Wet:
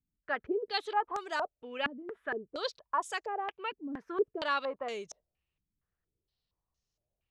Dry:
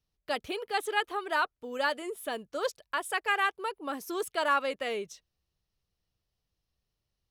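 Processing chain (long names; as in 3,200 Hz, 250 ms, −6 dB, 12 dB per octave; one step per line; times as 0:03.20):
low-pass on a step sequencer 4.3 Hz 250–6,600 Hz
level −5.5 dB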